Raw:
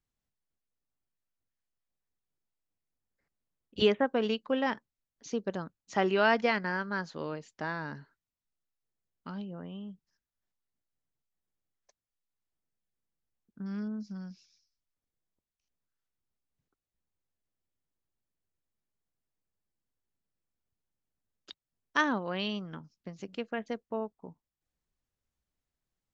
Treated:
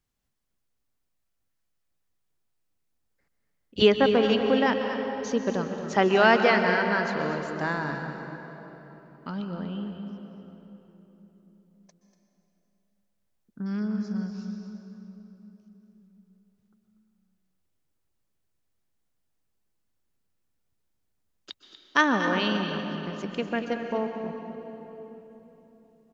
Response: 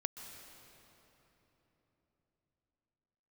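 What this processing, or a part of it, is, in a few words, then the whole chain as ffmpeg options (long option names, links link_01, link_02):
cave: -filter_complex "[0:a]aecho=1:1:240:0.282[link_01];[1:a]atrim=start_sample=2205[link_02];[link_01][link_02]afir=irnorm=-1:irlink=0,volume=7.5dB"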